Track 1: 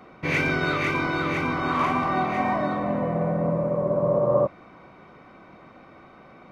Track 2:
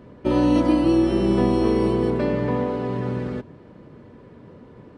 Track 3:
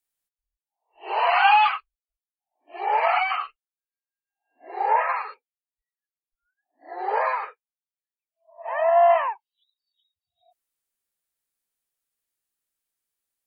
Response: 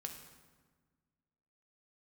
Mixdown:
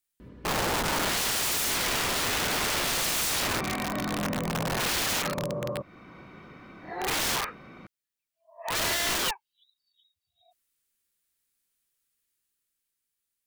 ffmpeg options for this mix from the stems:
-filter_complex "[0:a]alimiter=limit=-16.5dB:level=0:latency=1:release=395,acompressor=threshold=-27dB:ratio=5,adelay=1350,volume=-0.5dB[a];[1:a]alimiter=limit=-15.5dB:level=0:latency=1:release=11,aeval=exprs='val(0)+0.00282*(sin(2*PI*60*n/s)+sin(2*PI*2*60*n/s)/2+sin(2*PI*3*60*n/s)/3+sin(2*PI*4*60*n/s)/4+sin(2*PI*5*60*n/s)/5)':c=same,adelay=200,volume=-1.5dB[b];[2:a]alimiter=limit=-13dB:level=0:latency=1:release=183,volume=1.5dB[c];[a][b][c]amix=inputs=3:normalize=0,equalizer=f=720:t=o:w=1.4:g=-9,dynaudnorm=f=100:g=21:m=4.5dB,aeval=exprs='(mod(14.1*val(0)+1,2)-1)/14.1':c=same"

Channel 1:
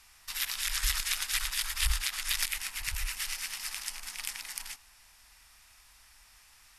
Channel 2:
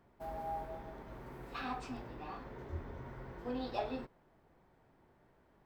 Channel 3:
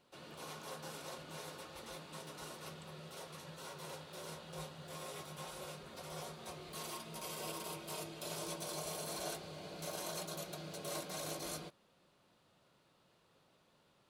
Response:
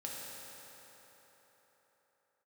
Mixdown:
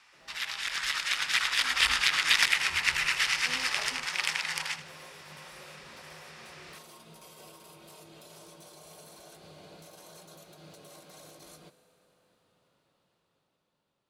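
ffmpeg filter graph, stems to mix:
-filter_complex "[0:a]highpass=f=590:p=1,adynamicsmooth=sensitivity=1:basefreq=7.2k,asplit=2[a][b];[b]highpass=f=720:p=1,volume=8dB,asoftclip=type=tanh:threshold=-14dB[c];[a][c]amix=inputs=2:normalize=0,lowpass=f=2.6k:p=1,volume=-6dB,volume=1dB,asplit=2[d][e];[e]volume=-13.5dB[f];[1:a]volume=-19dB[g];[2:a]alimiter=level_in=17dB:limit=-24dB:level=0:latency=1:release=172,volume=-17dB,volume=-12dB,asplit=2[h][i];[i]volume=-9.5dB[j];[3:a]atrim=start_sample=2205[k];[j][k]afir=irnorm=-1:irlink=0[l];[f]aecho=0:1:79|158|237|316|395:1|0.36|0.13|0.0467|0.0168[m];[d][g][h][l][m]amix=inputs=5:normalize=0,dynaudnorm=f=220:g=13:m=10dB"

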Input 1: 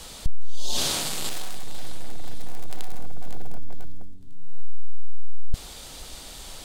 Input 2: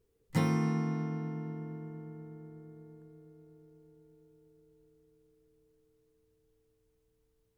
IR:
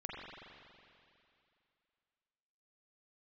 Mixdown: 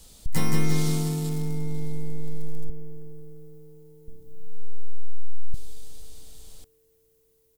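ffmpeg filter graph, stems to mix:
-filter_complex "[0:a]equalizer=f=1.4k:w=0.32:g=-13,volume=-6dB,asplit=3[a][b][c];[a]atrim=end=2.7,asetpts=PTS-STARTPTS,afade=t=out:st=2.696:d=0.004:c=hsin[d];[b]atrim=start=2.7:end=4.08,asetpts=PTS-STARTPTS,volume=0[e];[c]atrim=start=4.08,asetpts=PTS-STARTPTS,afade=t=in:d=0.004:c=hsin[f];[d][e][f]concat=n=3:v=0:a=1,asplit=2[g][h];[h]volume=-18dB[i];[1:a]aemphasis=mode=production:type=75kf,volume=0.5dB,asplit=2[j][k];[k]volume=-3dB[l];[2:a]atrim=start_sample=2205[m];[i][m]afir=irnorm=-1:irlink=0[n];[l]aecho=0:1:173|346|519|692|865|1038|1211|1384:1|0.56|0.314|0.176|0.0983|0.0551|0.0308|0.0173[o];[g][j][n][o]amix=inputs=4:normalize=0"

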